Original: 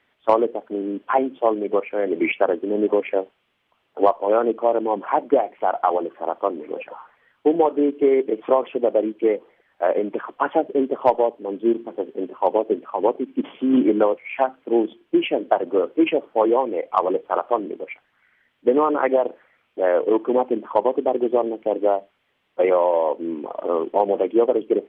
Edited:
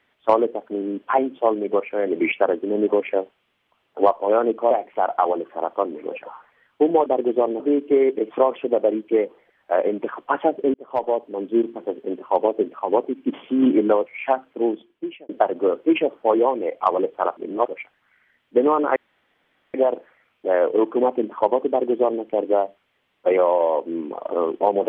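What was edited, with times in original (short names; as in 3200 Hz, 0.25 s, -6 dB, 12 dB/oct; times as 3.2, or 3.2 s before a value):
4.71–5.36 cut
10.85–11.35 fade in
14.55–15.4 fade out
17.48–17.79 reverse
19.07 insert room tone 0.78 s
21.02–21.56 copy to 7.71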